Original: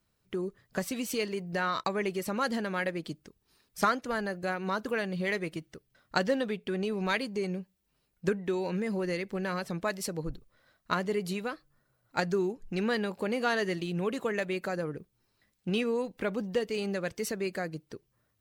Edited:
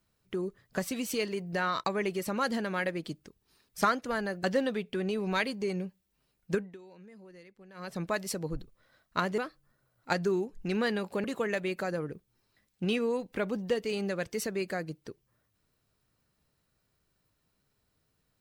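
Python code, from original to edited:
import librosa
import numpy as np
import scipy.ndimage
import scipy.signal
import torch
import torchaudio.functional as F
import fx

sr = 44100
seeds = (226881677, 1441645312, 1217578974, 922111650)

y = fx.edit(x, sr, fx.cut(start_s=4.44, length_s=1.74),
    fx.fade_down_up(start_s=8.25, length_s=1.49, db=-20.5, fade_s=0.26),
    fx.cut(start_s=11.12, length_s=0.33),
    fx.cut(start_s=13.31, length_s=0.78), tone=tone)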